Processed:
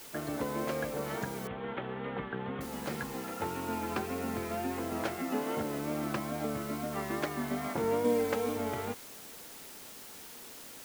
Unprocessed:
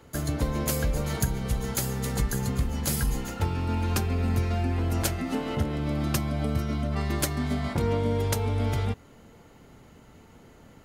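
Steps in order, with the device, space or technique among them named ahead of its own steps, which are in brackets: wax cylinder (BPF 280–2100 Hz; wow and flutter; white noise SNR 13 dB); 1.47–2.61 elliptic low-pass 3400 Hz, stop band 40 dB; 8.04–8.57 comb 3.9 ms, depth 78%; gain -1 dB

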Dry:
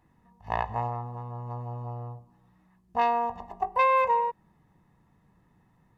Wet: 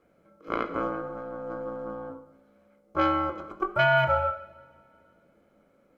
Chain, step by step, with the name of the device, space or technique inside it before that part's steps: alien voice (ring modulator 390 Hz; flange 1.6 Hz, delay 4.7 ms, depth 1.6 ms, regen +90%); 0.8–2.1 comb 5.6 ms, depth 54%; two-slope reverb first 0.8 s, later 2.6 s, DRR 9.5 dB; gain +7 dB

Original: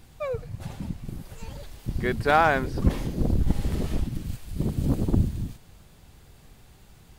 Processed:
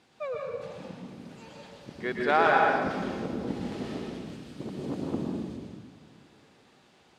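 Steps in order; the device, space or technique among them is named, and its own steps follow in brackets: supermarket ceiling speaker (BPF 280–5300 Hz; reverb RT60 1.4 s, pre-delay 0.111 s, DRR -1 dB); analogue delay 0.148 s, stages 4096, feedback 72%, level -21.5 dB; gain -4 dB

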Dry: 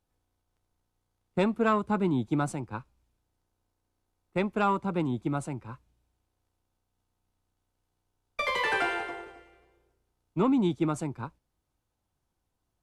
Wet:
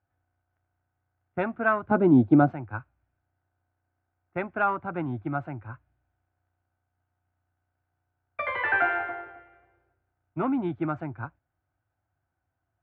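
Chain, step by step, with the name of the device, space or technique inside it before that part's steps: 1.91–2.51 graphic EQ 125/250/500/2000/4000/8000 Hz +4/+11/+11/-4/+6/-4 dB; bass cabinet (speaker cabinet 69–2300 Hz, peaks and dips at 98 Hz +9 dB, 200 Hz -10 dB, 450 Hz -9 dB, 700 Hz +7 dB, 1000 Hz -4 dB, 1500 Hz +9 dB)

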